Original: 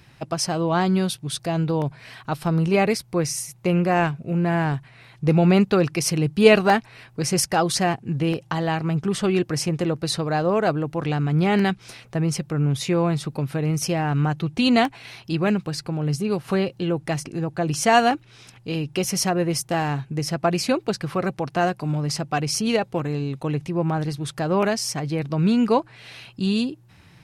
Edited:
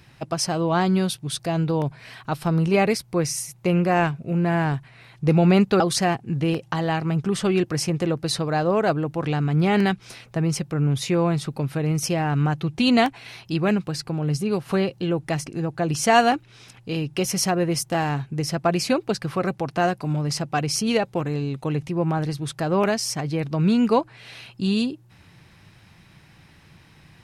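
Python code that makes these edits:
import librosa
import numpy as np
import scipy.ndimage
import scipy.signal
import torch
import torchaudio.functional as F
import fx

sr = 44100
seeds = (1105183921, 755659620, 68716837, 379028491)

y = fx.edit(x, sr, fx.cut(start_s=5.8, length_s=1.79), tone=tone)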